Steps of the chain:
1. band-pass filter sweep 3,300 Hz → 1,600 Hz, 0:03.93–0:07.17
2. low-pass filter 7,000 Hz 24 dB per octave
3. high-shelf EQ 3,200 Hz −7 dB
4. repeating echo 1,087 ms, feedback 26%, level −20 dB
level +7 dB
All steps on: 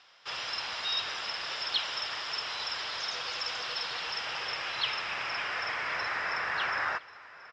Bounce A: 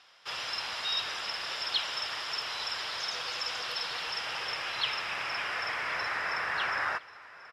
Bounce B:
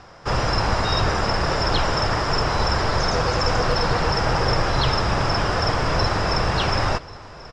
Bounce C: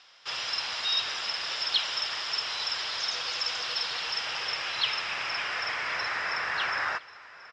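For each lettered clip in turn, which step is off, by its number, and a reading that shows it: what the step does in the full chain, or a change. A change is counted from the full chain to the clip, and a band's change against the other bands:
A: 2, 8 kHz band +2.0 dB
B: 1, 125 Hz band +22.0 dB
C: 3, 8 kHz band +5.0 dB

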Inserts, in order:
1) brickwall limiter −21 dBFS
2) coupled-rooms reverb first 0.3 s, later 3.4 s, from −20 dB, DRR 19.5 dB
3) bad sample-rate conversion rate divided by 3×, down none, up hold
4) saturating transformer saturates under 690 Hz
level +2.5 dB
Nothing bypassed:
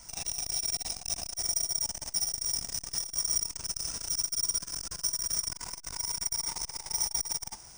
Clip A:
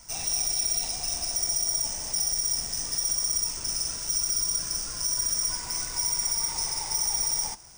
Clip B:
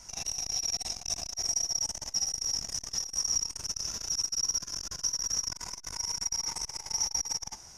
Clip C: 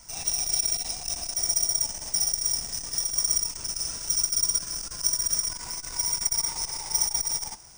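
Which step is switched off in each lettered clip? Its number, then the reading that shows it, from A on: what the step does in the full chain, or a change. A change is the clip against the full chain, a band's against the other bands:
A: 4, change in crest factor −4.5 dB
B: 3, 4 kHz band +2.0 dB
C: 1, change in crest factor +2.5 dB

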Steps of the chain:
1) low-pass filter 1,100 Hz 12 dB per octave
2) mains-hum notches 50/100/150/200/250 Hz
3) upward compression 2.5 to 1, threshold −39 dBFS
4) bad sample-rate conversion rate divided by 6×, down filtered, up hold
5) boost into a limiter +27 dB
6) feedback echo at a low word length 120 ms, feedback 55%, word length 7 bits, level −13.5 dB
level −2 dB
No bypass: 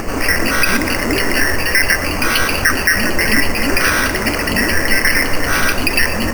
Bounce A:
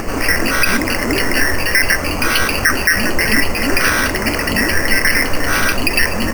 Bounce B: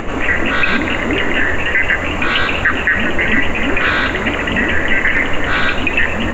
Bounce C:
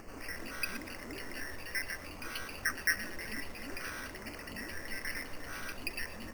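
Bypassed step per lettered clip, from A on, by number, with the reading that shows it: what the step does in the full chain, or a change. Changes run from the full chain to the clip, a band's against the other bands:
6, change in crest factor −1.5 dB
4, 4 kHz band −3.0 dB
5, change in crest factor +9.5 dB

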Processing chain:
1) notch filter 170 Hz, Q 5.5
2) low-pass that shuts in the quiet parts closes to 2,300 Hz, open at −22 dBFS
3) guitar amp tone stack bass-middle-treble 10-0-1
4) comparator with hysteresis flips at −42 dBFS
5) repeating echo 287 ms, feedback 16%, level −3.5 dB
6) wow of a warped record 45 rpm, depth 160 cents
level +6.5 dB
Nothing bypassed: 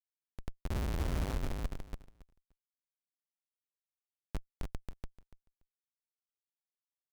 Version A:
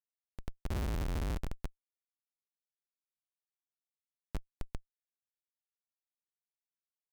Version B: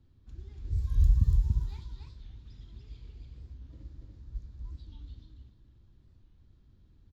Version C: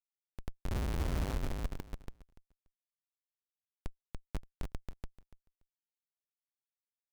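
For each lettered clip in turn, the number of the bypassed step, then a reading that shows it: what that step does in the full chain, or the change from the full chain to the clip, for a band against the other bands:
5, change in momentary loudness spread −2 LU
4, change in crest factor +3.0 dB
2, change in momentary loudness spread +3 LU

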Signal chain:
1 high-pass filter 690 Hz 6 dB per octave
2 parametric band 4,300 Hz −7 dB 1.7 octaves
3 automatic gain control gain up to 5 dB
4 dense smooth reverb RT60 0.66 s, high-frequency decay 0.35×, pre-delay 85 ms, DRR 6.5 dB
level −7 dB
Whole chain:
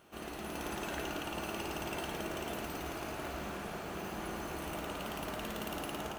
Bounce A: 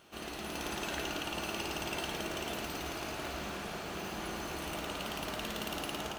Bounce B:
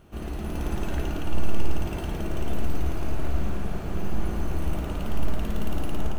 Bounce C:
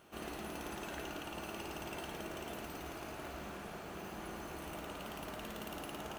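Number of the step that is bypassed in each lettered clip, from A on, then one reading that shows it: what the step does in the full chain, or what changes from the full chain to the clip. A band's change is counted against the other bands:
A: 2, 4 kHz band +5.0 dB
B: 1, 125 Hz band +16.0 dB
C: 3, change in crest factor +1.5 dB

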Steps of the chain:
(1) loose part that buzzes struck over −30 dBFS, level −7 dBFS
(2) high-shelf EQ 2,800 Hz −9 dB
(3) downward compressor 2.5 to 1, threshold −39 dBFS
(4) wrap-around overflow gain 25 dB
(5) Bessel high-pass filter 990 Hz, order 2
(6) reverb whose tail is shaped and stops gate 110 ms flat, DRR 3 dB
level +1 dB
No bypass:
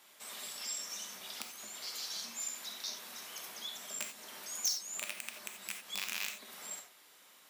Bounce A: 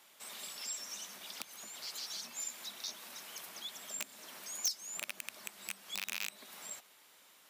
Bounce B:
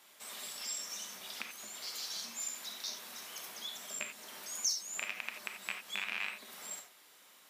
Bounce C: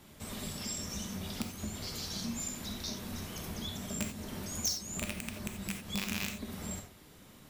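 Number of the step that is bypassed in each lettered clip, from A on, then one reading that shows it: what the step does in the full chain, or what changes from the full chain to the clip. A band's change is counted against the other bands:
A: 6, change in momentary loudness spread +1 LU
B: 4, distortion level −7 dB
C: 5, 250 Hz band +21.5 dB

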